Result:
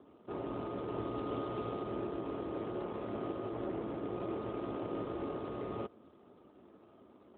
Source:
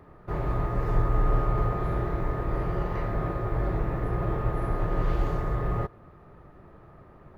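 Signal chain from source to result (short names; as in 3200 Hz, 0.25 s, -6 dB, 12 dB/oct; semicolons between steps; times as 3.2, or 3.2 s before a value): median filter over 25 samples; resonant low shelf 190 Hz -7.5 dB, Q 3; gain -6 dB; AMR-NB 12.2 kbps 8000 Hz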